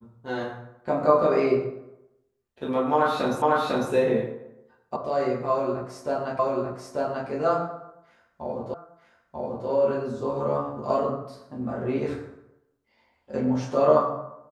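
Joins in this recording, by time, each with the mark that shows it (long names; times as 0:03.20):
0:03.42: the same again, the last 0.5 s
0:04.96: cut off before it has died away
0:06.39: the same again, the last 0.89 s
0:08.74: the same again, the last 0.94 s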